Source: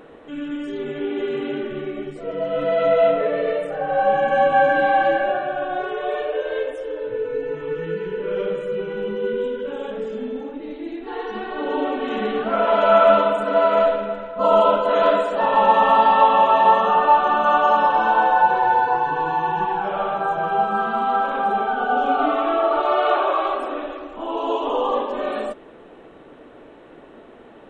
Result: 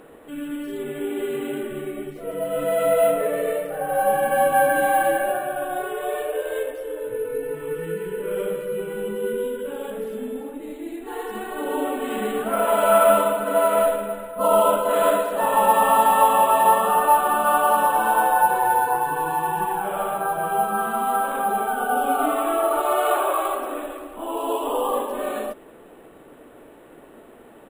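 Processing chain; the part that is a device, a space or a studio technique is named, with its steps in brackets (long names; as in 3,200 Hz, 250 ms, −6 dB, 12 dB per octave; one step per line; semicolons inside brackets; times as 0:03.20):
crushed at another speed (tape speed factor 0.8×; decimation without filtering 5×; tape speed factor 1.25×)
level −2 dB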